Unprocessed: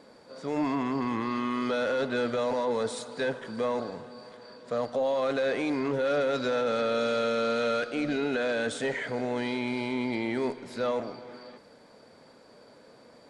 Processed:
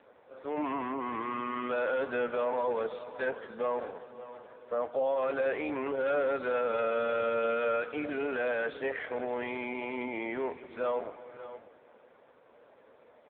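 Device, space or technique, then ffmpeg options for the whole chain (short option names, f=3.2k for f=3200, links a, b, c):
satellite phone: -filter_complex "[0:a]asplit=3[a][b][c];[a]afade=t=out:st=1.21:d=0.02[d];[b]bandreject=f=351.1:t=h:w=4,bandreject=f=702.2:t=h:w=4,bandreject=f=1.0533k:t=h:w=4,bandreject=f=1.4044k:t=h:w=4,bandreject=f=1.7555k:t=h:w=4,bandreject=f=2.1066k:t=h:w=4,bandreject=f=2.4577k:t=h:w=4,bandreject=f=2.8088k:t=h:w=4,bandreject=f=3.1599k:t=h:w=4,bandreject=f=3.511k:t=h:w=4,bandreject=f=3.8621k:t=h:w=4,bandreject=f=4.2132k:t=h:w=4,bandreject=f=4.5643k:t=h:w=4,bandreject=f=4.9154k:t=h:w=4,bandreject=f=5.2665k:t=h:w=4,bandreject=f=5.6176k:t=h:w=4,bandreject=f=5.9687k:t=h:w=4,bandreject=f=6.3198k:t=h:w=4,bandreject=f=6.6709k:t=h:w=4,bandreject=f=7.022k:t=h:w=4,bandreject=f=7.3731k:t=h:w=4,bandreject=f=7.7242k:t=h:w=4,bandreject=f=8.0753k:t=h:w=4,bandreject=f=8.4264k:t=h:w=4,bandreject=f=8.7775k:t=h:w=4,bandreject=f=9.1286k:t=h:w=4,bandreject=f=9.4797k:t=h:w=4,bandreject=f=9.8308k:t=h:w=4,bandreject=f=10.1819k:t=h:w=4,bandreject=f=10.533k:t=h:w=4,bandreject=f=10.8841k:t=h:w=4,afade=t=in:st=1.21:d=0.02,afade=t=out:st=2.19:d=0.02[e];[c]afade=t=in:st=2.19:d=0.02[f];[d][e][f]amix=inputs=3:normalize=0,highpass=390,lowpass=3.3k,aecho=1:1:580:0.188" -ar 8000 -c:a libopencore_amrnb -b:a 5900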